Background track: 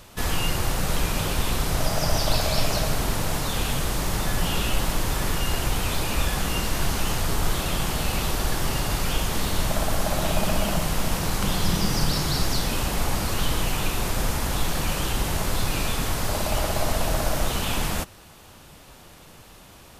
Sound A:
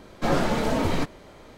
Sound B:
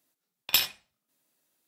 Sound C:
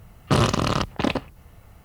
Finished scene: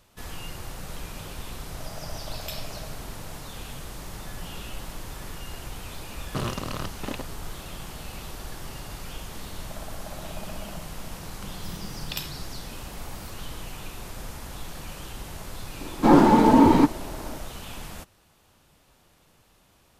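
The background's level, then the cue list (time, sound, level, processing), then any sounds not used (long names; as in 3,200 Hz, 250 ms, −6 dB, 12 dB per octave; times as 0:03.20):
background track −13 dB
0:01.94: mix in B −15.5 dB
0:06.04: mix in C −11 dB
0:11.63: mix in B −7 dB + multiband upward and downward compressor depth 100%
0:15.81: mix in A −2 dB + hollow resonant body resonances 290/880 Hz, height 16 dB, ringing for 20 ms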